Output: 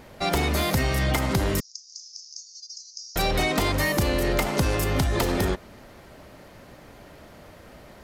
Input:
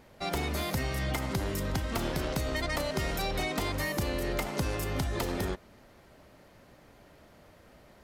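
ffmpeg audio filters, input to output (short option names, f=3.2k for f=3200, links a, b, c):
-filter_complex "[0:a]asplit=2[a][b];[b]asoftclip=type=tanh:threshold=-31dB,volume=-6.5dB[c];[a][c]amix=inputs=2:normalize=0,asettb=1/sr,asplit=3[d][e][f];[d]atrim=end=1.604[g];[e]atrim=start=1.6:end=3.16,asetpts=PTS-STARTPTS,afade=t=in:d=0.004:c=qsin,afade=t=out:st=1.556:d=0.004:c=qsin,asuperpass=centerf=5700:order=8:qfactor=3[h];[f]atrim=start=3.156[i];[g][h]acrossfade=d=0.004:c1=hsin:c2=qsin[j];[j][i]acrossfade=d=0.004:c1=qsin:c2=hsin,volume=6dB"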